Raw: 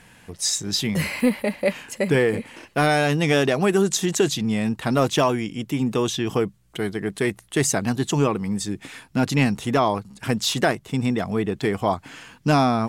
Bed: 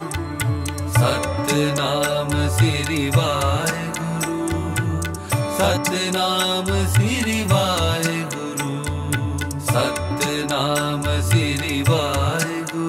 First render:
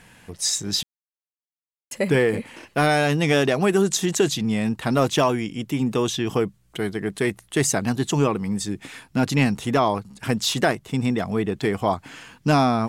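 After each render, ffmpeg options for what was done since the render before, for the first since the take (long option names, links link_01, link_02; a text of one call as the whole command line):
ffmpeg -i in.wav -filter_complex "[0:a]asplit=3[link_01][link_02][link_03];[link_01]atrim=end=0.83,asetpts=PTS-STARTPTS,afade=type=out:start_time=0.826:duration=0.004:curve=hsin[link_04];[link_02]atrim=start=0.83:end=1.91,asetpts=PTS-STARTPTS,volume=0[link_05];[link_03]atrim=start=1.91,asetpts=PTS-STARTPTS,afade=type=in:duration=0.004:curve=hsin[link_06];[link_04][link_05][link_06]concat=n=3:v=0:a=1" out.wav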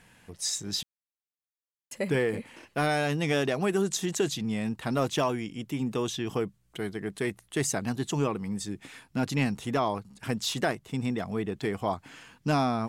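ffmpeg -i in.wav -af "volume=-7.5dB" out.wav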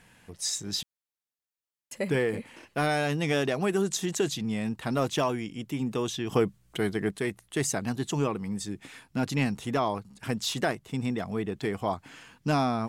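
ffmpeg -i in.wav -filter_complex "[0:a]asplit=3[link_01][link_02][link_03];[link_01]atrim=end=6.322[link_04];[link_02]atrim=start=6.318:end=7.112,asetpts=PTS-STARTPTS,volume=5.5dB[link_05];[link_03]atrim=start=7.108[link_06];[link_04][link_05]acrossfade=duration=0.004:curve1=hsin:curve2=hsin[link_07];[link_07][link_06]acrossfade=duration=0.004:curve1=hsin:curve2=hsin" out.wav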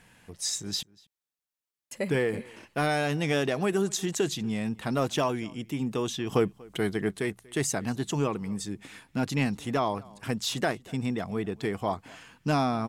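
ffmpeg -i in.wav -filter_complex "[0:a]asplit=2[link_01][link_02];[link_02]adelay=239.1,volume=-24dB,highshelf=frequency=4000:gain=-5.38[link_03];[link_01][link_03]amix=inputs=2:normalize=0" out.wav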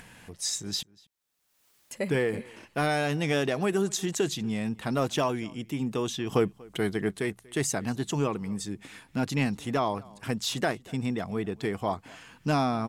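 ffmpeg -i in.wav -af "acompressor=mode=upward:threshold=-43dB:ratio=2.5" out.wav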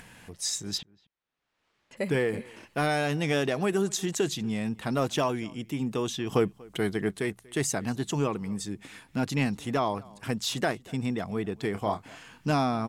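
ffmpeg -i in.wav -filter_complex "[0:a]asplit=3[link_01][link_02][link_03];[link_01]afade=type=out:start_time=0.77:duration=0.02[link_04];[link_02]lowpass=2800,afade=type=in:start_time=0.77:duration=0.02,afade=type=out:start_time=1.96:duration=0.02[link_05];[link_03]afade=type=in:start_time=1.96:duration=0.02[link_06];[link_04][link_05][link_06]amix=inputs=3:normalize=0,asettb=1/sr,asplit=3[link_07][link_08][link_09];[link_07]atrim=end=11.714[link_10];[link_08]atrim=start=11.71:end=12.51,asetpts=PTS-STARTPTS,afade=type=in:duration=0.004:curve=qsin,afade=type=out:start_time=0.796:duration=0.004:curve=qsin,asplit=2[link_11][link_12];[link_12]adelay=29,volume=-8dB[link_13];[link_11][link_13]amix=inputs=2:normalize=0,atrim=end_sample=35280[link_14];[link_09]atrim=start=12.506[link_15];[link_10][link_14]acrossfade=duration=0.004:curve1=hsin:curve2=qsin[link_16];[link_16][link_15]acrossfade=duration=0.004:curve1=qsin:curve2=hsin" out.wav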